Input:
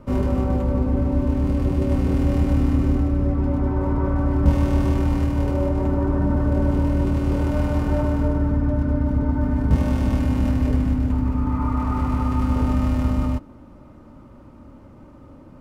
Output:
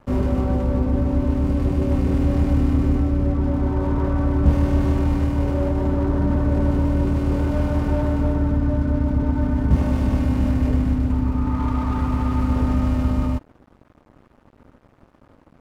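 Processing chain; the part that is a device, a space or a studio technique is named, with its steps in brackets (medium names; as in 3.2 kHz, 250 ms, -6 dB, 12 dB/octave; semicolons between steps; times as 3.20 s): early transistor amplifier (crossover distortion -43.5 dBFS; slew-rate limiter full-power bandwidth 41 Hz); trim +1 dB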